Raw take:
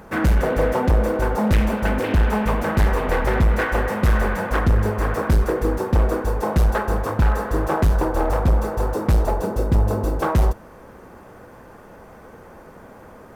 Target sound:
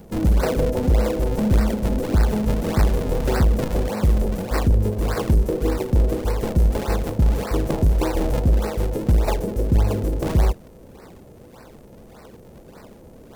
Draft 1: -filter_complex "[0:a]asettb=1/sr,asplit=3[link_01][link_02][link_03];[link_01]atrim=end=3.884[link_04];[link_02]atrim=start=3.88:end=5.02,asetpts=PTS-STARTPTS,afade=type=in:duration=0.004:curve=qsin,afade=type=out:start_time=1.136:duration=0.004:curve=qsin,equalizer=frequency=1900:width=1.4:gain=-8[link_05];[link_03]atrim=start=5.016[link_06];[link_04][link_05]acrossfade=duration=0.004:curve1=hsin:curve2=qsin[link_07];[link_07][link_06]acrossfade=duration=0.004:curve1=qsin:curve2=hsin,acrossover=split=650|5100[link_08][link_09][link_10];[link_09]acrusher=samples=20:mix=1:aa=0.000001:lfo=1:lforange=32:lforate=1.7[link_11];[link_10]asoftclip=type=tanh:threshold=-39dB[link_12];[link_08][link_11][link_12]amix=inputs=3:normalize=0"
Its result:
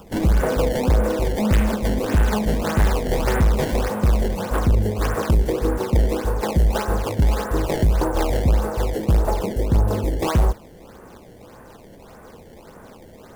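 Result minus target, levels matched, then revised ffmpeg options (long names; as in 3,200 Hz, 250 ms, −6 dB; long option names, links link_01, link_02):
sample-and-hold swept by an LFO: distortion −13 dB
-filter_complex "[0:a]asettb=1/sr,asplit=3[link_01][link_02][link_03];[link_01]atrim=end=3.884[link_04];[link_02]atrim=start=3.88:end=5.02,asetpts=PTS-STARTPTS,afade=type=in:duration=0.004:curve=qsin,afade=type=out:start_time=1.136:duration=0.004:curve=qsin,equalizer=frequency=1900:width=1.4:gain=-8[link_05];[link_03]atrim=start=5.016[link_06];[link_04][link_05]acrossfade=duration=0.004:curve1=hsin:curve2=qsin[link_07];[link_07][link_06]acrossfade=duration=0.004:curve1=qsin:curve2=hsin,acrossover=split=650|5100[link_08][link_09][link_10];[link_09]acrusher=samples=65:mix=1:aa=0.000001:lfo=1:lforange=104:lforate=1.7[link_11];[link_10]asoftclip=type=tanh:threshold=-39dB[link_12];[link_08][link_11][link_12]amix=inputs=3:normalize=0"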